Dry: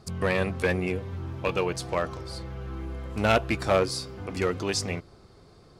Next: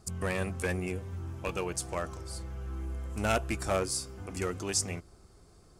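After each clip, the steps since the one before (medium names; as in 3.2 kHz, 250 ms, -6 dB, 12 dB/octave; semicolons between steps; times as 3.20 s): graphic EQ 125/250/500/1000/2000/4000/8000 Hz -9/-5/-8/-6/-6/-11/+6 dB; trim +2 dB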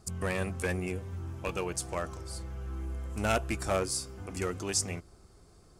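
no audible change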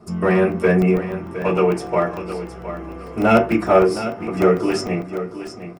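feedback delay 714 ms, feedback 28%, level -11.5 dB; reverberation RT60 0.30 s, pre-delay 3 ms, DRR -6.5 dB; crackling interface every 0.15 s, samples 64, zero, from 0.52 s; trim -5.5 dB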